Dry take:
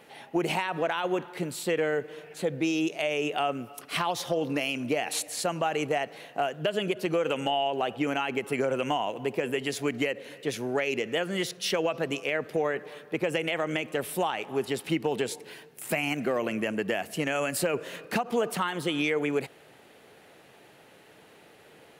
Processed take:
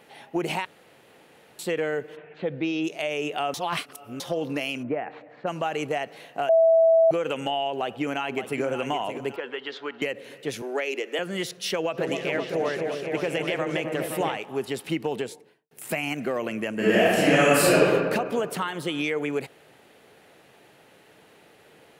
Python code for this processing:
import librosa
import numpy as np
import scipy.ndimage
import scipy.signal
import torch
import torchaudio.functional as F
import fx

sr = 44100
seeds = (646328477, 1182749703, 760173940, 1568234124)

y = fx.lowpass(x, sr, hz=fx.line((2.15, 2400.0), (2.83, 5100.0)), slope=24, at=(2.15, 2.83), fade=0.02)
y = fx.lowpass(y, sr, hz=1800.0, slope=24, at=(4.82, 5.46), fade=0.02)
y = fx.echo_throw(y, sr, start_s=7.66, length_s=0.97, ms=570, feedback_pct=40, wet_db=-9.5)
y = fx.cabinet(y, sr, low_hz=480.0, low_slope=12, high_hz=3900.0, hz=(660.0, 940.0, 1400.0, 2400.0, 3400.0), db=(-8, 3, 5, -8, 4), at=(9.36, 10.02))
y = fx.steep_highpass(y, sr, hz=280.0, slope=48, at=(10.62, 11.19))
y = fx.echo_opening(y, sr, ms=259, hz=750, octaves=1, feedback_pct=70, wet_db=-3, at=(11.97, 14.36), fade=0.02)
y = fx.studio_fade_out(y, sr, start_s=15.09, length_s=0.62)
y = fx.reverb_throw(y, sr, start_s=16.74, length_s=1.08, rt60_s=1.8, drr_db=-10.5)
y = fx.edit(y, sr, fx.room_tone_fill(start_s=0.65, length_s=0.94),
    fx.reverse_span(start_s=3.54, length_s=0.66),
    fx.bleep(start_s=6.49, length_s=0.62, hz=655.0, db=-14.0), tone=tone)